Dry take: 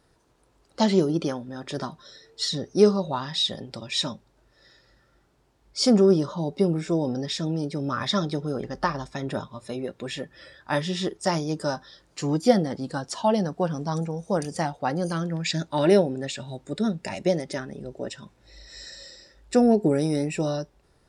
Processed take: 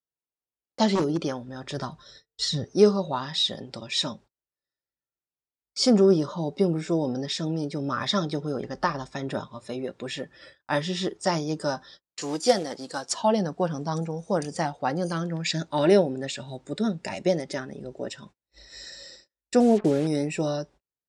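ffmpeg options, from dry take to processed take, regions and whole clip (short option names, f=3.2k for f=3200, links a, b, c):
-filter_complex "[0:a]asettb=1/sr,asplit=3[a][b][c];[a]atrim=end=0.954[d];[b]atrim=start=0.95:end=2.65,asetpts=PTS-STARTPTS,afade=t=in:d=0.004:c=qsin,afade=t=out:st=1.696:d=0.004:c=qsin,asubboost=boost=11.5:cutoff=120,aeval=exprs='0.141*(abs(mod(val(0)/0.141+3,4)-2)-1)':c=same[e];[c]atrim=start=2.646[f];[d][e]acrossfade=d=0.004:c1=hsin:c2=qsin[g];[g][f]acrossfade=d=0.004:c1=qsin:c2=hsin,asettb=1/sr,asplit=3[h][i][j];[h]atrim=end=12.214[k];[i]atrim=start=12.21:end=13.13,asetpts=PTS-STARTPTS,afade=t=in:d=0.004:c=qsin,afade=t=out:st=0.916:d=0.004:c=qsin,bass=f=250:g=-14,treble=f=4k:g=8,acrusher=bits=4:mode=log:mix=0:aa=0.000001[l];[j]atrim=start=13.126[m];[k][l]acrossfade=d=0.004:c1=hsin:c2=qsin[n];[n][m]acrossfade=d=0.004:c1=qsin:c2=hsin,asettb=1/sr,asplit=3[o][p][q];[o]atrim=end=19.604[r];[p]atrim=start=19.6:end=20.07,asetpts=PTS-STARTPTS,afade=t=in:d=0.004:c=qsin,afade=t=out:st=0.466:d=0.004:c=qsin,lowpass=1.3k,acrusher=bits=5:mix=0:aa=0.5[s];[q]atrim=start=20.066[t];[r][s]acrossfade=d=0.004:c1=hsin:c2=qsin[u];[u][t]acrossfade=d=0.004:c1=qsin:c2=hsin,agate=range=-38dB:threshold=-47dB:ratio=16:detection=peak,lowpass=f=9.2k:w=0.5412,lowpass=f=9.2k:w=1.3066,lowshelf=f=80:g=-9"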